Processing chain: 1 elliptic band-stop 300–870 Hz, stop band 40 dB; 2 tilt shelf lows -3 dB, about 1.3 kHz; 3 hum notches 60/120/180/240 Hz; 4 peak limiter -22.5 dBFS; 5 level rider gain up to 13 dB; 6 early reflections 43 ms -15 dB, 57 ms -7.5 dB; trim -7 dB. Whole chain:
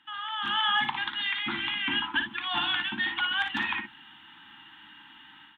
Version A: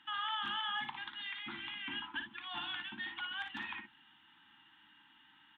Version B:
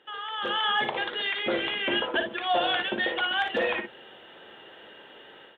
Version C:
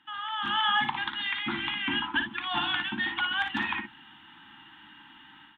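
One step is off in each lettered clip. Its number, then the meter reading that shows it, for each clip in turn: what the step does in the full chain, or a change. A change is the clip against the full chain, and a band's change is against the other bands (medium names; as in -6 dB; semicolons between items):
5, loudness change -12.0 LU; 1, 500 Hz band +20.5 dB; 2, 4 kHz band -4.0 dB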